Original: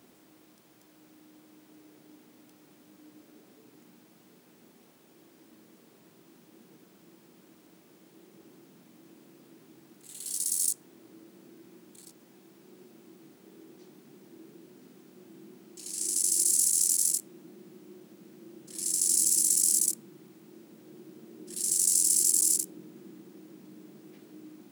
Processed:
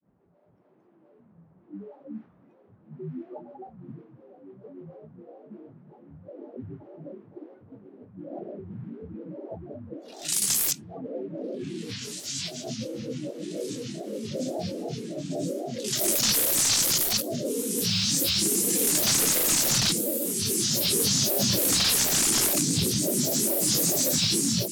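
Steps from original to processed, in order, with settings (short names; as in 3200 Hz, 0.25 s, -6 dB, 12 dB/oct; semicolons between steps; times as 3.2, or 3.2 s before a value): tone controls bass +10 dB, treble -13 dB; spectral noise reduction 22 dB; low shelf 420 Hz -9.5 dB; on a send: diffused feedback echo 1.778 s, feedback 66%, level -7.5 dB; on the sum: AGC gain up to 6 dB; sine folder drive 15 dB, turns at -15 dBFS; grains 0.177 s, grains 14/s, spray 23 ms, pitch spread up and down by 12 st; low-pass opened by the level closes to 610 Hz, open at -23.5 dBFS; mismatched tape noise reduction encoder only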